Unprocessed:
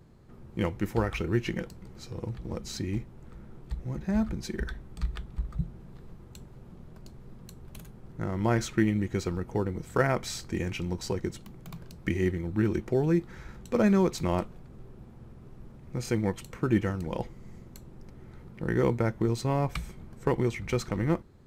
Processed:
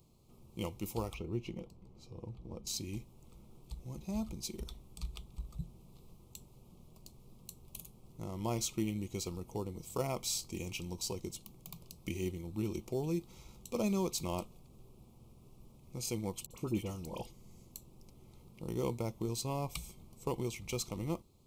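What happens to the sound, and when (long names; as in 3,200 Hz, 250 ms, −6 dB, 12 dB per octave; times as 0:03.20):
0:01.14–0:02.67: low-pass filter 1,100 Hz 6 dB per octave
0:16.46–0:17.75: all-pass dispersion highs, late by 47 ms, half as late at 1,700 Hz
whole clip: Chebyshev band-stop filter 1,100–2,500 Hz, order 2; first-order pre-emphasis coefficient 0.8; level +4.5 dB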